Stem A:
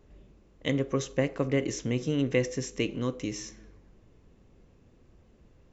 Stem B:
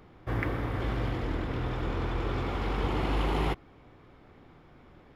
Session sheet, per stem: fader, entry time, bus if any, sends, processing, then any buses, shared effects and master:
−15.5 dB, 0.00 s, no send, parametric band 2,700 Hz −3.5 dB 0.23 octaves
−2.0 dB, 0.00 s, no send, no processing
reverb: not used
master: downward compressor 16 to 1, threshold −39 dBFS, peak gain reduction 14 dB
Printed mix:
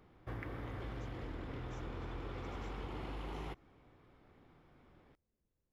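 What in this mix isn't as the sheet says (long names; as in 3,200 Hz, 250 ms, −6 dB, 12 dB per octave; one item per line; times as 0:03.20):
stem A −15.5 dB → −27.0 dB
stem B −2.0 dB → −9.5 dB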